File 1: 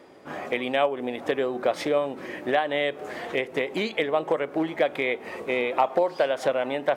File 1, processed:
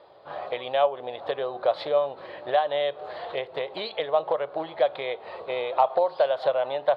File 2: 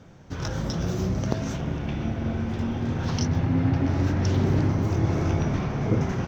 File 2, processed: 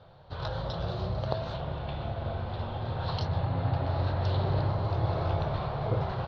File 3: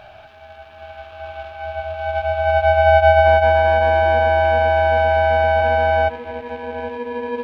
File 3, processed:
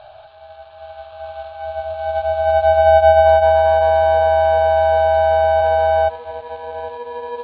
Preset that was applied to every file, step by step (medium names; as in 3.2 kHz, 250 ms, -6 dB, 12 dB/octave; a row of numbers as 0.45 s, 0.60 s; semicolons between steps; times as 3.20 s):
FFT filter 130 Hz 0 dB, 250 Hz -15 dB, 590 Hz +7 dB, 1.1 kHz +5 dB, 2.2 kHz -6 dB, 4.2 kHz +9 dB, 6 kHz -22 dB; trim -4.5 dB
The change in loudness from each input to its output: -0.5 LU, -5.5 LU, +1.5 LU